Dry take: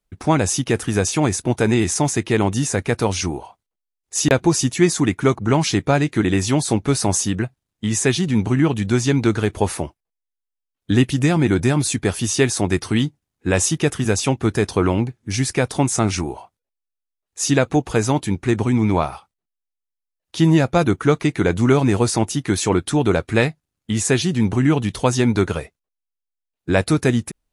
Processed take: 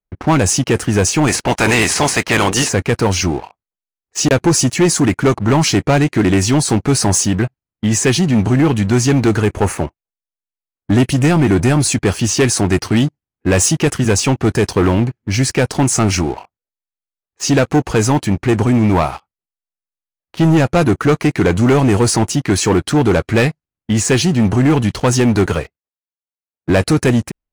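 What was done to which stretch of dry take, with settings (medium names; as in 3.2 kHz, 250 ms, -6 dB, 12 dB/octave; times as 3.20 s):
1.27–2.68 s: spectral peaks clipped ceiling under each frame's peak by 20 dB
9.40–10.93 s: high-order bell 4.1 kHz -9 dB 1 oct
25.46–26.70 s: high-pass 54 Hz 24 dB/octave
whole clip: level-controlled noise filter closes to 2 kHz, open at -13 dBFS; band-stop 3.6 kHz, Q 7.7; waveshaping leveller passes 3; trim -3.5 dB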